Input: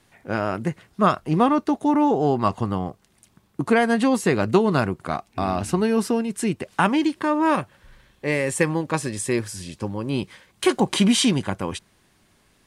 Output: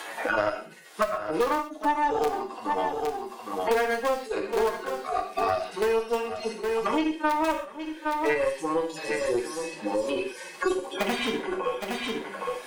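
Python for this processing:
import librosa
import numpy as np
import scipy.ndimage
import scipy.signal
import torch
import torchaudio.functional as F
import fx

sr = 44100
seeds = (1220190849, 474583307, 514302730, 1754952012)

p1 = fx.hpss_only(x, sr, part='harmonic')
p2 = (np.mod(10.0 ** (12.0 / 20.0) * p1 + 1.0, 2.0) - 1.0) / 10.0 ** (12.0 / 20.0)
p3 = p1 + (p2 * 10.0 ** (-11.5 / 20.0))
p4 = scipy.signal.sosfilt(scipy.signal.butter(4, 420.0, 'highpass', fs=sr, output='sos'), p3)
p5 = fx.rev_gated(p4, sr, seeds[0], gate_ms=160, shape='falling', drr_db=1.0)
p6 = fx.tube_stage(p5, sr, drive_db=12.0, bias=0.7)
p7 = p6 + fx.echo_single(p6, sr, ms=814, db=-14.0, dry=0)
y = fx.band_squash(p7, sr, depth_pct=100)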